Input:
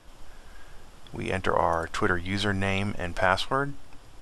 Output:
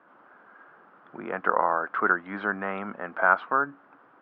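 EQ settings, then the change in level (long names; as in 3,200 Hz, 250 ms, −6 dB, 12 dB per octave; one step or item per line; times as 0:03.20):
high-pass filter 200 Hz 24 dB per octave
low-pass with resonance 1,400 Hz, resonance Q 3.3
high-frequency loss of the air 180 metres
−3.0 dB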